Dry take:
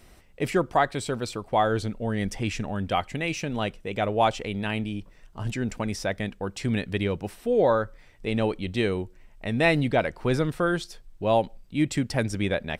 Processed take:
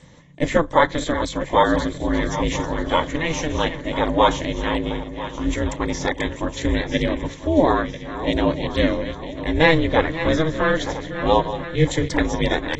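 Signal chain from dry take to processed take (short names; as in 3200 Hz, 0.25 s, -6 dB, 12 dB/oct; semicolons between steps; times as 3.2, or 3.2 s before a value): regenerating reverse delay 0.497 s, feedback 65%, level -11.5 dB; dynamic EQ 1400 Hz, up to +5 dB, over -49 dBFS, Q 8; ring modulator 160 Hz; ripple EQ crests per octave 1.1, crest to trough 10 dB; gain +6.5 dB; AAC 24 kbps 24000 Hz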